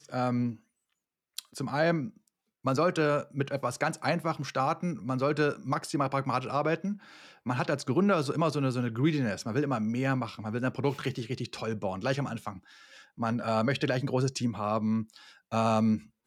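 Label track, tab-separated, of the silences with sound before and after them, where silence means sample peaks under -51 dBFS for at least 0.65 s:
0.590000	1.370000	silence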